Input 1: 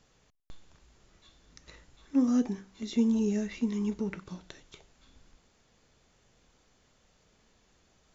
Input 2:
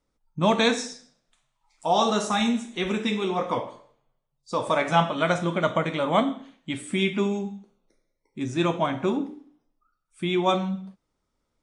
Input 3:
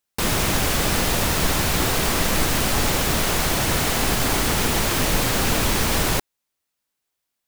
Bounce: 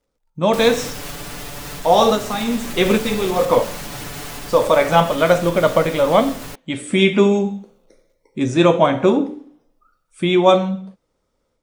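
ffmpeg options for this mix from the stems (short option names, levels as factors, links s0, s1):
-filter_complex "[0:a]acrusher=bits=7:dc=4:mix=0:aa=0.000001,volume=0.168,asplit=2[s0][s1];[1:a]equalizer=f=510:t=o:w=0.5:g=9,dynaudnorm=f=170:g=17:m=3.76,volume=1[s2];[2:a]aecho=1:1:6.9:0.83,alimiter=limit=0.168:level=0:latency=1:release=422,adelay=350,volume=0.422[s3];[s1]apad=whole_len=512487[s4];[s2][s4]sidechaincompress=threshold=0.00398:ratio=3:attack=16:release=284[s5];[s0][s5][s3]amix=inputs=3:normalize=0,dynaudnorm=f=320:g=3:m=2"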